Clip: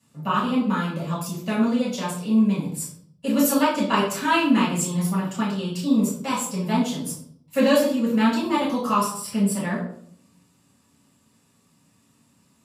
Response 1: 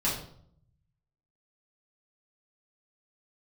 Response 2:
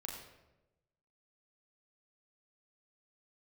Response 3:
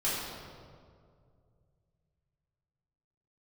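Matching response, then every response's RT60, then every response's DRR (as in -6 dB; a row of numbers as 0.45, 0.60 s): 1; 0.60, 1.0, 2.2 s; -8.0, -1.0, -10.5 dB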